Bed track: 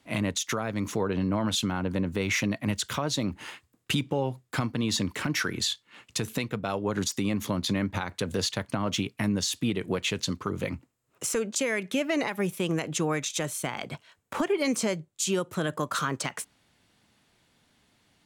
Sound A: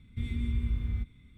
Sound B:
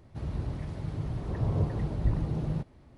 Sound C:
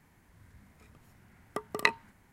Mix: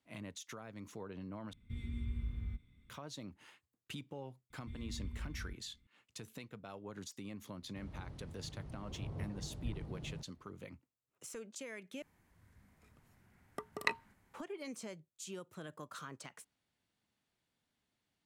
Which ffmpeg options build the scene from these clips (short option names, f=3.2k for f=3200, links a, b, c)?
-filter_complex "[1:a]asplit=2[a][b];[0:a]volume=-19dB,asplit=3[c][d][e];[c]atrim=end=1.534[f];[a]atrim=end=1.37,asetpts=PTS-STARTPTS,volume=-9.5dB[g];[d]atrim=start=2.896:end=12.024[h];[3:a]atrim=end=2.32,asetpts=PTS-STARTPTS,volume=-8dB[i];[e]atrim=start=14.336[j];[b]atrim=end=1.37,asetpts=PTS-STARTPTS,volume=-14dB,afade=t=in:d=0.004:c=hsin,afade=t=out:st=1.366:d=0.004:c=hsin,adelay=4500[k];[2:a]atrim=end=2.97,asetpts=PTS-STARTPTS,volume=-15dB,afade=t=in:d=0.004:c=hsin,afade=t=out:st=2.966:d=0.004:c=hsin,adelay=7600[l];[f][g]acrossfade=d=0.004:c1=hsin:c2=hsin[m];[m][h]acrossfade=d=0.004:c1=hsin:c2=hsin[n];[n][i]acrossfade=d=0.004:c1=hsin:c2=hsin[o];[o][j]acrossfade=d=0.004:c1=hsin:c2=hsin[p];[p][k][l]amix=inputs=3:normalize=0"